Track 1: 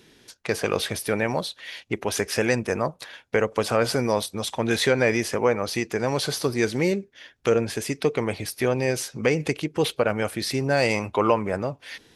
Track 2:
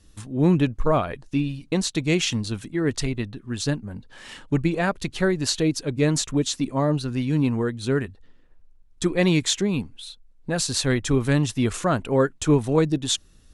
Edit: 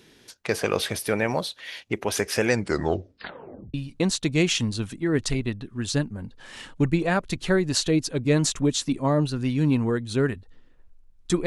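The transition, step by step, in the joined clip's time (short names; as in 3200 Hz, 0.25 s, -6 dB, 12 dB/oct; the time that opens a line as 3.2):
track 1
2.5 tape stop 1.24 s
3.74 switch to track 2 from 1.46 s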